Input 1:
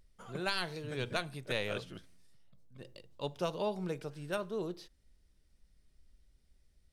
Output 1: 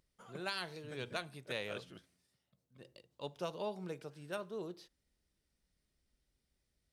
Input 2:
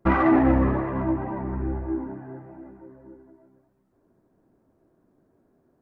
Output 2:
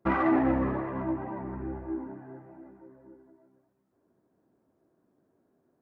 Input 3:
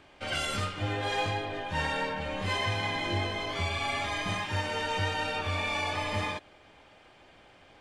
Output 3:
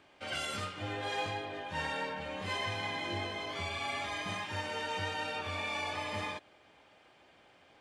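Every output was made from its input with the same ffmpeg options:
-af "highpass=f=140:p=1,volume=0.562"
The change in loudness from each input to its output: -5.5 LU, -6.0 LU, -5.5 LU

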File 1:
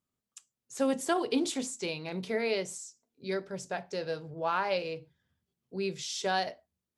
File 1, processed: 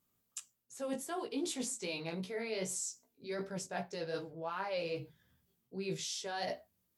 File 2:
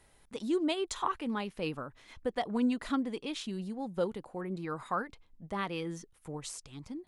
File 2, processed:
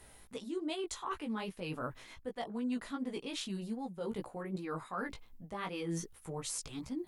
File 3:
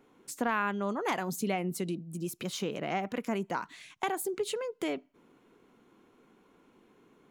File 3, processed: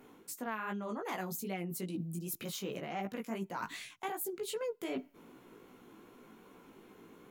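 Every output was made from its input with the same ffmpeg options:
-af "equalizer=f=15000:w=1.1:g=14.5,areverse,acompressor=threshold=0.00891:ratio=12,areverse,flanger=delay=15.5:depth=3:speed=2.6,volume=2.66"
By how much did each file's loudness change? -6.5 LU, -4.5 LU, -5.5 LU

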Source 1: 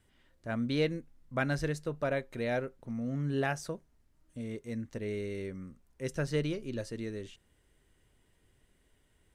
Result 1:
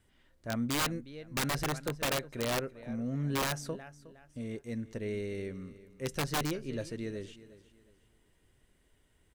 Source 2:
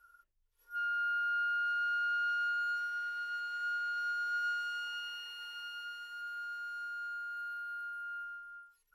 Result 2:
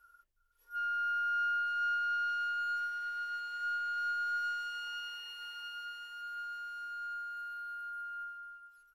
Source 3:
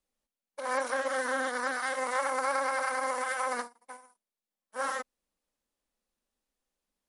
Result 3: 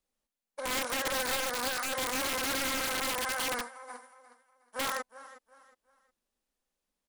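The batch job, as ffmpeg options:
-af "aecho=1:1:363|726|1089:0.141|0.0438|0.0136,aeval=exprs='(mod(17.8*val(0)+1,2)-1)/17.8':c=same,aeval=exprs='0.0562*(cos(1*acos(clip(val(0)/0.0562,-1,1)))-cos(1*PI/2))+0.000447*(cos(6*acos(clip(val(0)/0.0562,-1,1)))-cos(6*PI/2))':c=same"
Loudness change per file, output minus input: 0.0 LU, 0.0 LU, 0.0 LU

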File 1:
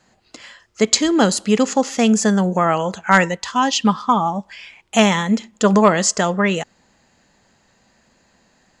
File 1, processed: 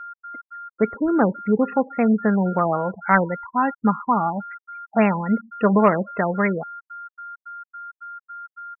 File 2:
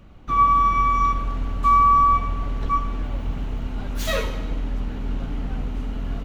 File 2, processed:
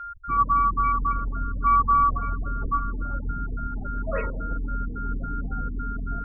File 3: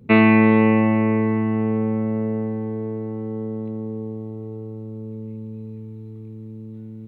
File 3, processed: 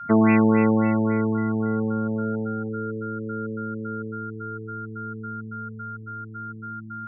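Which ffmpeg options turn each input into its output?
-af "aeval=exprs='val(0)+0.0316*sin(2*PI*1400*n/s)':c=same,afftfilt=real='re*gte(hypot(re,im),0.0398)':imag='im*gte(hypot(re,im),0.0398)':win_size=1024:overlap=0.75,afftfilt=real='re*lt(b*sr/1024,970*pow(2900/970,0.5+0.5*sin(2*PI*3.6*pts/sr)))':imag='im*lt(b*sr/1024,970*pow(2900/970,0.5+0.5*sin(2*PI*3.6*pts/sr)))':win_size=1024:overlap=0.75,volume=0.708"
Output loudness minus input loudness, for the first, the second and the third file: -4.0 LU, -4.0 LU, -4.5 LU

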